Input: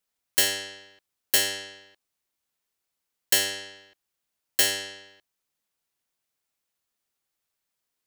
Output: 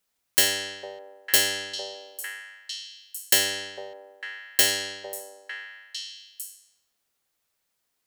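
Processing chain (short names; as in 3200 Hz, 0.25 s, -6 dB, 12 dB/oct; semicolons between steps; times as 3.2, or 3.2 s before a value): in parallel at -2 dB: compressor, threshold -30 dBFS, peak gain reduction 13 dB; on the sum: delay with a stepping band-pass 0.452 s, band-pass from 600 Hz, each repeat 1.4 oct, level -3.5 dB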